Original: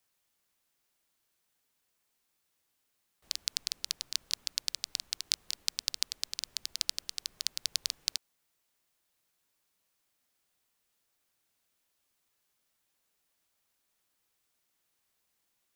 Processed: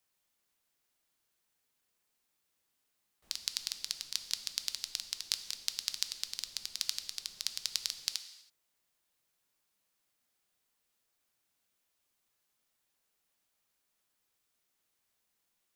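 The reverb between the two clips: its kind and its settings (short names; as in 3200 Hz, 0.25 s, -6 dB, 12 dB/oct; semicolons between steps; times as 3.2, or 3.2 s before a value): non-linear reverb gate 0.35 s falling, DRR 9 dB; gain -2.5 dB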